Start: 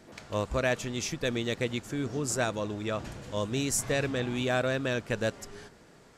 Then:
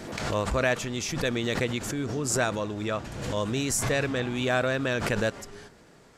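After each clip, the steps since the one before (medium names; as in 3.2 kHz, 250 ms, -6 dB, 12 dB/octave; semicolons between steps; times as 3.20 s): dynamic bell 1.4 kHz, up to +3 dB, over -38 dBFS, Q 0.73; swell ahead of each attack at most 44 dB/s; trim +1 dB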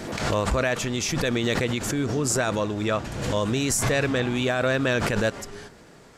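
peak limiter -18.5 dBFS, peak gain reduction 7 dB; trim +5 dB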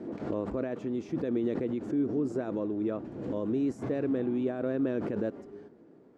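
band-pass filter 310 Hz, Q 2.2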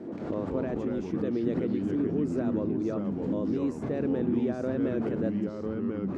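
ever faster or slower copies 122 ms, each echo -3 st, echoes 2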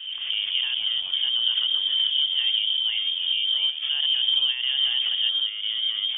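frequency inversion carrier 3.4 kHz; trim +4.5 dB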